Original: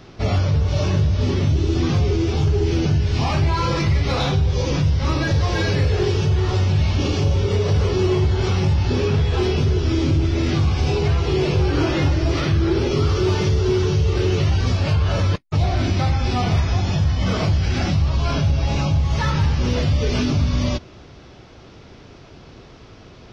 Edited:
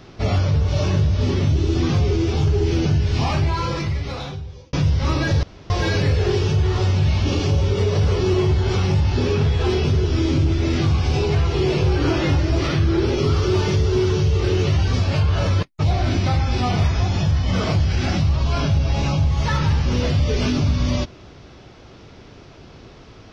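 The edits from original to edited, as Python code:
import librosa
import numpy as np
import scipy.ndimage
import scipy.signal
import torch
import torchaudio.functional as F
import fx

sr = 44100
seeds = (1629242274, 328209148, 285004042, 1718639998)

y = fx.edit(x, sr, fx.fade_out_span(start_s=3.24, length_s=1.49),
    fx.insert_room_tone(at_s=5.43, length_s=0.27), tone=tone)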